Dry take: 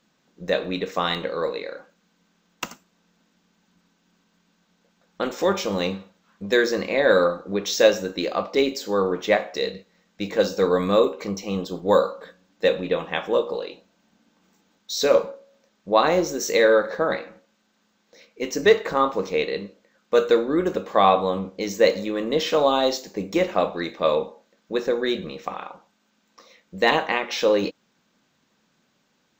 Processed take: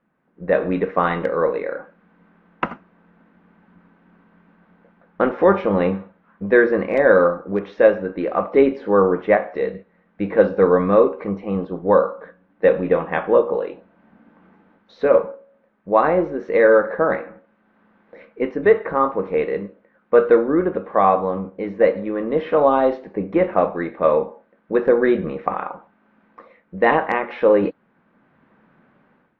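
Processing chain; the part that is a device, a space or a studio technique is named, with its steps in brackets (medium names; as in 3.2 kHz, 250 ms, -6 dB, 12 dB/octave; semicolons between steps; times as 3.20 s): action camera in a waterproof case (low-pass 1.9 kHz 24 dB/octave; level rider gain up to 14 dB; trim -1.5 dB; AAC 48 kbps 32 kHz)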